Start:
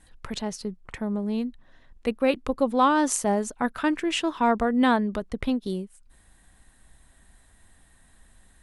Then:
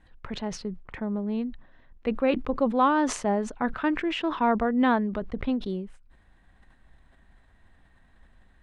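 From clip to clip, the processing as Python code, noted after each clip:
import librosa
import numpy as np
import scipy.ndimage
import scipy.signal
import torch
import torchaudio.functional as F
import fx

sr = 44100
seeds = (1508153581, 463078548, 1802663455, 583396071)

y = scipy.signal.sosfilt(scipy.signal.butter(2, 2800.0, 'lowpass', fs=sr, output='sos'), x)
y = fx.sustainer(y, sr, db_per_s=110.0)
y = y * 10.0 ** (-1.5 / 20.0)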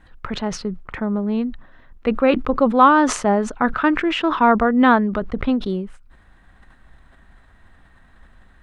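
y = fx.peak_eq(x, sr, hz=1300.0, db=6.0, octaves=0.49)
y = y * 10.0 ** (7.5 / 20.0)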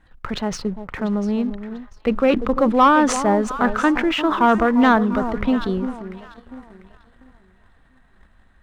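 y = fx.echo_alternate(x, sr, ms=347, hz=980.0, feedback_pct=56, wet_db=-10.5)
y = fx.leveller(y, sr, passes=1)
y = y * 10.0 ** (-3.5 / 20.0)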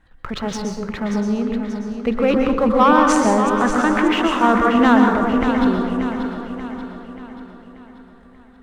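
y = fx.echo_feedback(x, sr, ms=584, feedback_pct=49, wet_db=-9.0)
y = fx.rev_plate(y, sr, seeds[0], rt60_s=0.75, hf_ratio=0.7, predelay_ms=110, drr_db=2.5)
y = y * 10.0 ** (-1.0 / 20.0)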